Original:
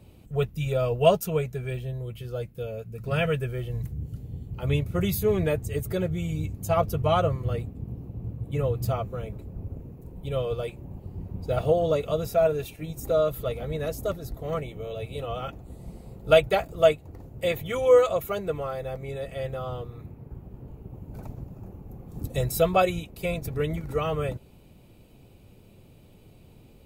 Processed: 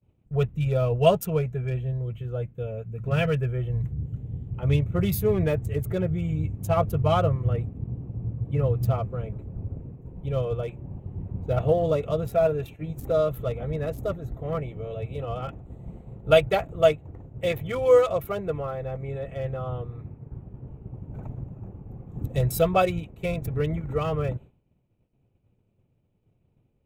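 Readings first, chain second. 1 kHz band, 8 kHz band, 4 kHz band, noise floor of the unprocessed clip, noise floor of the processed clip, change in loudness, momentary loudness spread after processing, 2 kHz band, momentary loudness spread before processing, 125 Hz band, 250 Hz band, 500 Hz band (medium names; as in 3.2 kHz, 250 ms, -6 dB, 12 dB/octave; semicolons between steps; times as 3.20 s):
0.0 dB, no reading, -1.5 dB, -53 dBFS, -69 dBFS, +1.0 dB, 17 LU, -1.0 dB, 20 LU, +4.0 dB, +2.0 dB, 0.0 dB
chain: local Wiener filter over 9 samples; expander -40 dBFS; peaking EQ 120 Hz +5 dB 0.86 oct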